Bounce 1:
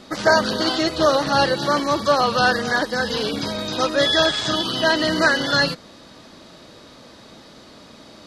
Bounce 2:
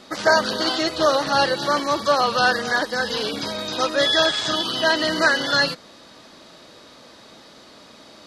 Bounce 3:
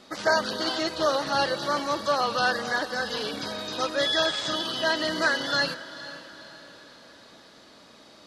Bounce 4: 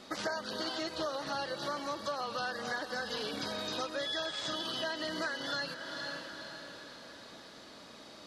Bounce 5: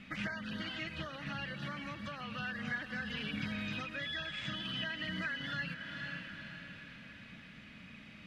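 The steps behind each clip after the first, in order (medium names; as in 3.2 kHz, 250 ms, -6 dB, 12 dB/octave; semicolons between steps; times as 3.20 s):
bass shelf 260 Hz -8.5 dB
echo that smears into a reverb 471 ms, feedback 47%, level -15 dB; trim -6 dB
compression 6:1, threshold -34 dBFS, peak gain reduction 15 dB
FFT filter 200 Hz 0 dB, 360 Hz -21 dB, 960 Hz -21 dB, 2.5 kHz +1 dB, 4.2 kHz -23 dB; trim +8.5 dB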